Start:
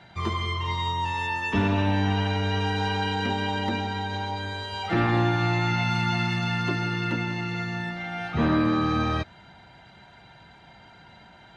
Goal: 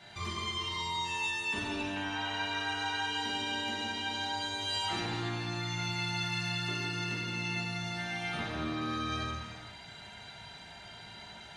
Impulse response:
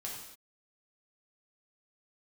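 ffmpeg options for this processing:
-filter_complex "[0:a]asettb=1/sr,asplit=3[s0][s1][s2];[s0]atrim=end=1.964[s3];[s1]atrim=start=1.96:end=3.02,asetpts=PTS-STARTPTS,afade=t=in:d=0.004:c=qsin,afade=t=out:st=1.056:d=0.004:c=qsin,equalizer=f=1300:t=o:w=1.4:g=10[s4];[s2]atrim=start=3.016[s5];[s3][s4]acrossfade=d=0.004:c1=hsin:c2=qsin[s6];[s6][s5]acrossfade=d=0.004:c1=qsin:c2=hsin,acompressor=threshold=0.0224:ratio=6,crystalizer=i=4.5:c=0[s7];[1:a]atrim=start_sample=2205,asetrate=23814,aresample=44100[s8];[s7][s8]afir=irnorm=-1:irlink=0,volume=0.501"

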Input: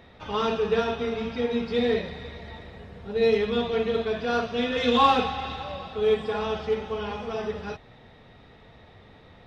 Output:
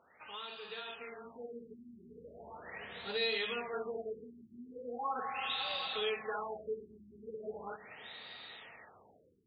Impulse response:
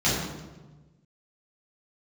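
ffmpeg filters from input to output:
-filter_complex "[0:a]aderivative,acompressor=threshold=0.00178:ratio=2.5,asplit=2[s0][s1];[1:a]atrim=start_sample=2205,asetrate=61740,aresample=44100,adelay=146[s2];[s1][s2]afir=irnorm=-1:irlink=0,volume=0.0168[s3];[s0][s3]amix=inputs=2:normalize=0,dynaudnorm=f=670:g=5:m=3.76,afftfilt=real='re*lt(b*sr/1024,380*pow(4900/380,0.5+0.5*sin(2*PI*0.39*pts/sr)))':imag='im*lt(b*sr/1024,380*pow(4900/380,0.5+0.5*sin(2*PI*0.39*pts/sr)))':win_size=1024:overlap=0.75,volume=2.24"

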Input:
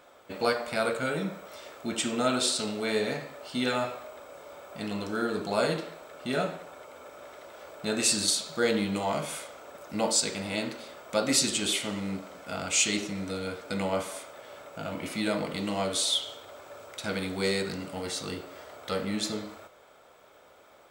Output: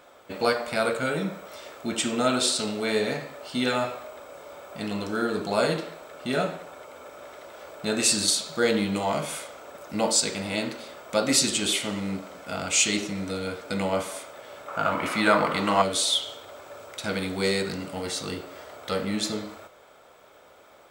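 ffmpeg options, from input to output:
-filter_complex "[0:a]asettb=1/sr,asplit=3[s0][s1][s2];[s0]atrim=end=14.684[s3];[s1]atrim=start=14.68:end=15.82,asetpts=PTS-STARTPTS,afade=t=in:d=0.004:c=qsin,afade=t=out:st=1.136:d=0.004:c=qsin,equalizer=f=1200:t=o:w=1.5:g=14.5[s4];[s2]atrim=start=15.816[s5];[s3][s4]acrossfade=d=0.004:c1=hsin:c2=qsin[s6];[s6][s5]acrossfade=d=0.004:c1=qsin:c2=hsin,volume=1.41"

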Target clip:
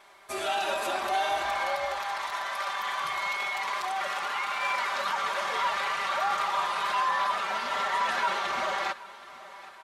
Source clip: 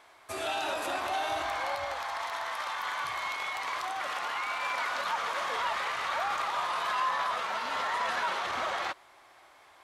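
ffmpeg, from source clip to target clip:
-af "aecho=1:1:5.1:0.92,aecho=1:1:776|1552|2328|3104|3880:0.112|0.0628|0.0352|0.0197|0.011"

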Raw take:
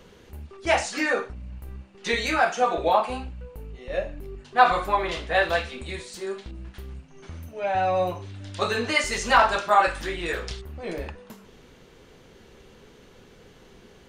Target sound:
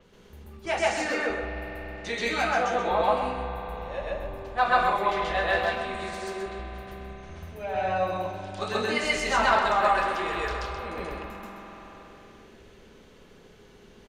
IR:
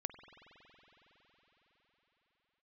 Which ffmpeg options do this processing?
-filter_complex "[0:a]asplit=2[s0][s1];[s1]adelay=128.3,volume=0.447,highshelf=f=4000:g=-2.89[s2];[s0][s2]amix=inputs=2:normalize=0,asplit=2[s3][s4];[1:a]atrim=start_sample=2205,adelay=133[s5];[s4][s5]afir=irnorm=-1:irlink=0,volume=1.78[s6];[s3][s6]amix=inputs=2:normalize=0,adynamicequalizer=threshold=0.0178:dfrequency=5800:dqfactor=0.7:tfrequency=5800:tqfactor=0.7:attack=5:release=100:ratio=0.375:range=2:mode=cutabove:tftype=highshelf,volume=0.422"

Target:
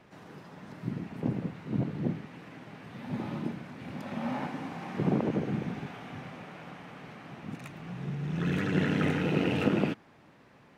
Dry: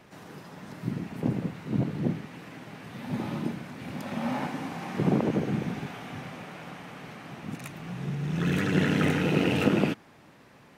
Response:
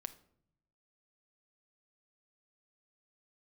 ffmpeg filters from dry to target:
-af "highshelf=f=6200:g=-10.5,volume=0.708"

